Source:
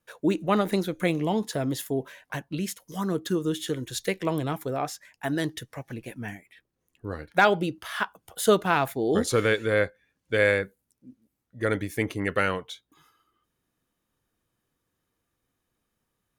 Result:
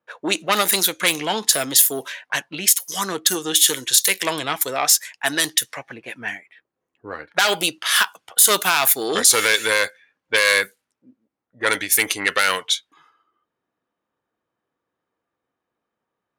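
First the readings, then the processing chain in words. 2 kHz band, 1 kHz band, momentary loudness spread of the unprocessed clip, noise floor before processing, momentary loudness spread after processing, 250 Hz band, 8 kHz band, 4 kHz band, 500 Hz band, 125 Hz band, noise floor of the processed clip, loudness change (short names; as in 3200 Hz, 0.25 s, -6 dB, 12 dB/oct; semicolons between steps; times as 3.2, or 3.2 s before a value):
+9.0 dB, +5.0 dB, 16 LU, -80 dBFS, 13 LU, -3.5 dB, +22.0 dB, +17.0 dB, 0.0 dB, -8.5 dB, -82 dBFS, +9.0 dB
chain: tube stage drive 16 dB, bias 0.3; differentiator; low-pass opened by the level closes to 750 Hz, open at -40 dBFS; maximiser +28 dB; gain -1 dB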